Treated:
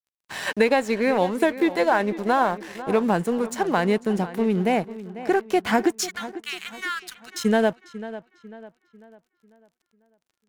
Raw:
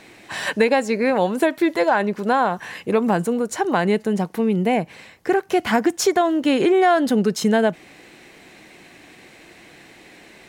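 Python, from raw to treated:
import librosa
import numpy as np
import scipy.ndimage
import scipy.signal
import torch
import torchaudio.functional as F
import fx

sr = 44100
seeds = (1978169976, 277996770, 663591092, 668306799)

y = fx.ellip_highpass(x, sr, hz=1200.0, order=4, stop_db=40, at=(5.95, 7.44), fade=0.02)
y = np.sign(y) * np.maximum(np.abs(y) - 10.0 ** (-37.0 / 20.0), 0.0)
y = fx.echo_filtered(y, sr, ms=496, feedback_pct=42, hz=3400.0, wet_db=-14.5)
y = y * librosa.db_to_amplitude(-1.5)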